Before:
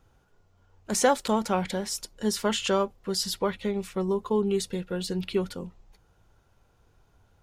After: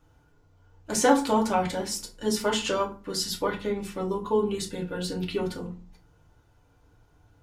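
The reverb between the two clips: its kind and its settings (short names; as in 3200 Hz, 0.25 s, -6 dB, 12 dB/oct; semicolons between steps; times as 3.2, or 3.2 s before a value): FDN reverb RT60 0.36 s, low-frequency decay 1.55×, high-frequency decay 0.65×, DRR -1.5 dB; gain -2.5 dB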